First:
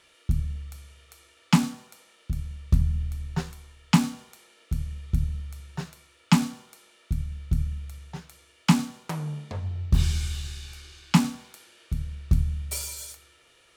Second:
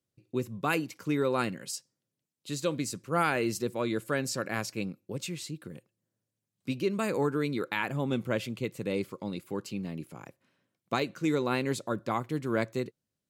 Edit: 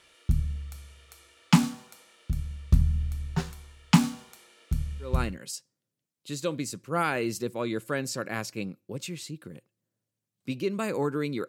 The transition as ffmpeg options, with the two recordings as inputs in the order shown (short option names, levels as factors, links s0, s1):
-filter_complex "[0:a]apad=whole_dur=11.48,atrim=end=11.48,atrim=end=5.39,asetpts=PTS-STARTPTS[s0];[1:a]atrim=start=1.19:end=7.68,asetpts=PTS-STARTPTS[s1];[s0][s1]acrossfade=d=0.4:c1=qsin:c2=qsin"